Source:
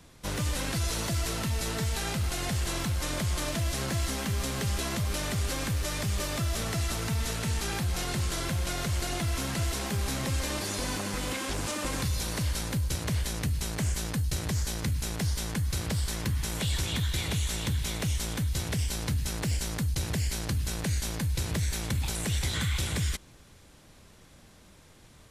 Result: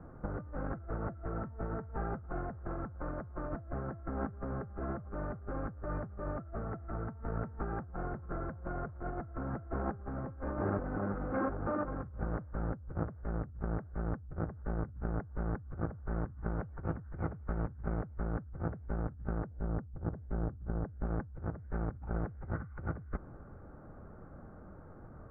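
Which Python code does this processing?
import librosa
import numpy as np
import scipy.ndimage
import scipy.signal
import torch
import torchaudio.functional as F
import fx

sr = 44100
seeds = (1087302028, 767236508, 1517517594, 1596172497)

y = fx.lowpass(x, sr, hz=1000.0, slope=6, at=(19.46, 21.06))
y = scipy.signal.sosfilt(scipy.signal.ellip(4, 1.0, 60, 1400.0, 'lowpass', fs=sr, output='sos'), y)
y = fx.notch(y, sr, hz=1000.0, q=8.3)
y = fx.over_compress(y, sr, threshold_db=-37.0, ratio=-0.5)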